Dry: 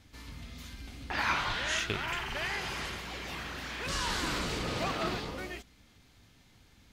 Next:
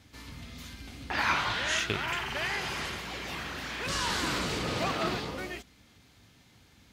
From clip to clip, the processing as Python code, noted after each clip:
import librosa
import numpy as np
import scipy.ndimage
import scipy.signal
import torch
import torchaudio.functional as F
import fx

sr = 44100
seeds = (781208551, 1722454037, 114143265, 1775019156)

y = scipy.signal.sosfilt(scipy.signal.butter(2, 66.0, 'highpass', fs=sr, output='sos'), x)
y = y * librosa.db_to_amplitude(2.5)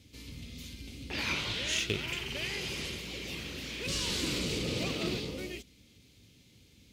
y = fx.band_shelf(x, sr, hz=1100.0, db=-14.0, octaves=1.7)
y = fx.cheby_harmonics(y, sr, harmonics=(2, 8), levels_db=(-16, -29), full_scale_db=-16.0)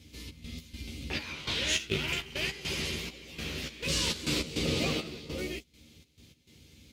y = fx.step_gate(x, sr, bpm=102, pattern='xx.x.xxx..xx.', floor_db=-12.0, edge_ms=4.5)
y = fx.doubler(y, sr, ms=13.0, db=-4.5)
y = y * librosa.db_to_amplitude(2.5)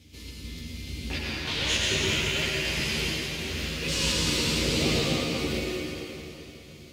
y = fx.rev_plate(x, sr, seeds[0], rt60_s=3.6, hf_ratio=0.9, predelay_ms=75, drr_db=-5.0)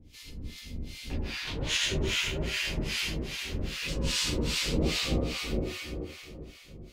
y = fx.octave_divider(x, sr, octaves=2, level_db=1.0)
y = fx.harmonic_tremolo(y, sr, hz=2.5, depth_pct=100, crossover_hz=940.0)